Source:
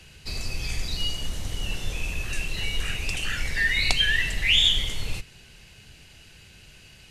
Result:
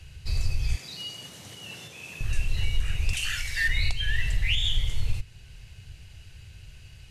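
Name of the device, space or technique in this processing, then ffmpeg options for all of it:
car stereo with a boomy subwoofer: -filter_complex "[0:a]lowshelf=f=150:t=q:w=1.5:g=11,alimiter=limit=0.335:level=0:latency=1:release=405,asettb=1/sr,asplit=3[s0][s1][s2];[s0]atrim=end=0.764[s3];[s1]atrim=start=0.76:end=2.21,asetpts=PTS-STARTPTS,afade=t=in:d=0.004:c=qsin,afade=t=out:st=1.446:d=0.004:c=qsin,highpass=f=180:w=0.5412,highpass=f=180:w=1.3066[s4];[s2]atrim=start=2.206[s5];[s3][s4]acrossfade=d=0.004:c1=hsin:c2=qsin[s6];[s6][s5]acrossfade=d=0.004:c1=qsin:c2=hsin,asettb=1/sr,asplit=3[s7][s8][s9];[s7]atrim=end=3.134[s10];[s8]atrim=start=3.13:end=3.68,asetpts=PTS-STARTPTS,afade=t=in:d=0.004:c=qsin,afade=t=out:st=0.546:d=0.004:c=qsin,tiltshelf=f=1100:g=-9[s11];[s9]atrim=start=3.676[s12];[s10][s11]acrossfade=d=0.004:c1=hsin:c2=qsin[s13];[s13][s12]acrossfade=d=0.004:c1=qsin:c2=hsin,volume=0.596"

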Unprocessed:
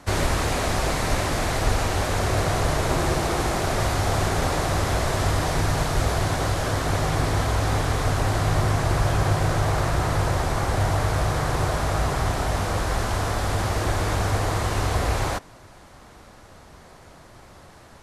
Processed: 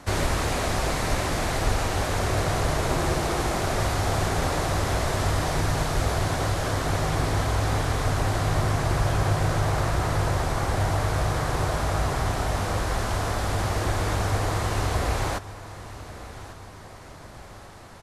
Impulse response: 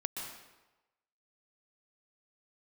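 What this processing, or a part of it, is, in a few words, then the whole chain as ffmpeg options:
ducked reverb: -filter_complex "[0:a]aecho=1:1:1146|2292|3438:0.119|0.0475|0.019,asplit=3[s0][s1][s2];[1:a]atrim=start_sample=2205[s3];[s1][s3]afir=irnorm=-1:irlink=0[s4];[s2]apad=whole_len=946519[s5];[s4][s5]sidechaincompress=threshold=0.0141:ratio=8:attack=16:release=400,volume=0.631[s6];[s0][s6]amix=inputs=2:normalize=0,volume=0.75"

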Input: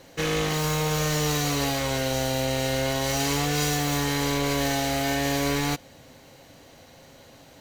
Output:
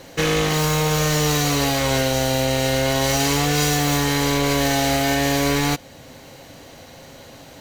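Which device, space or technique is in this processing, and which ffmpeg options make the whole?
clipper into limiter: -af "asoftclip=type=hard:threshold=0.178,alimiter=limit=0.133:level=0:latency=1:release=457,volume=2.51"

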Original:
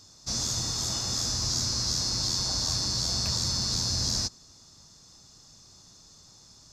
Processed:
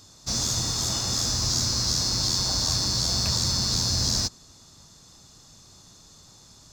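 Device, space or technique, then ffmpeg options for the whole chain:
exciter from parts: -filter_complex "[0:a]asplit=2[s0][s1];[s1]highpass=f=4100:w=0.5412,highpass=f=4100:w=1.3066,asoftclip=type=tanh:threshold=0.015,highpass=2900,volume=0.531[s2];[s0][s2]amix=inputs=2:normalize=0,volume=1.68"

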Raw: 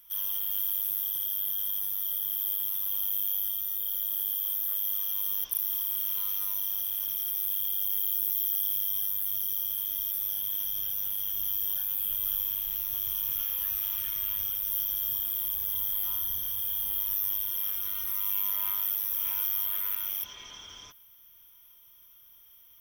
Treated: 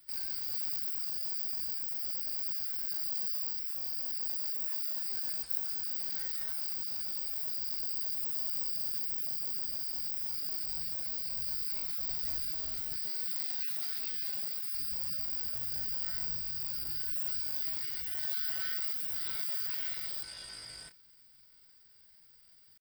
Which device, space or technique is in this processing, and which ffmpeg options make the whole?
chipmunk voice: -filter_complex "[0:a]asetrate=66075,aresample=44100,atempo=0.66742,asettb=1/sr,asplit=3[s0][s1][s2];[s0]atrim=end=12.974[s3];[s1]atrim=start=12.97:end=14.74,asetpts=PTS-STARTPTS,afade=t=in:d=0.004:c=qsin,afade=t=out:st=1.766:d=0.004:c=qsin,highpass=190[s4];[s2]atrim=start=14.736[s5];[s3][s4]acrossfade=d=0.004:c1=hsin:c2=qsin[s6];[s6][s5]acrossfade=d=0.004:c1=qsin:c2=hsin"

